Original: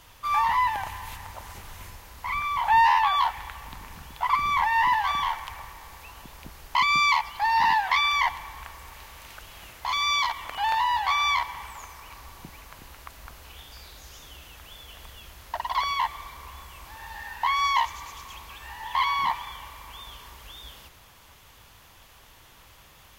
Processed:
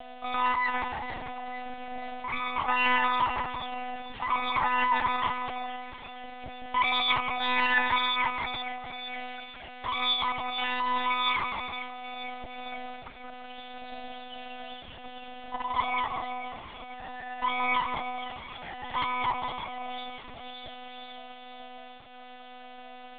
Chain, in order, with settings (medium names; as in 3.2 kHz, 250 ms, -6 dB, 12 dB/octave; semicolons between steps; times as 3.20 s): bass shelf 260 Hz +3 dB; in parallel at -3 dB: saturation -24.5 dBFS, distortion -9 dB; on the sum: whistle 680 Hz -29 dBFS; flange 0.56 Hz, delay 2.6 ms, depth 1.2 ms, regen +32%; two-band feedback delay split 2 kHz, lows 168 ms, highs 468 ms, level -7 dB; monotone LPC vocoder at 8 kHz 250 Hz; loudspeaker Doppler distortion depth 0.16 ms; trim -3.5 dB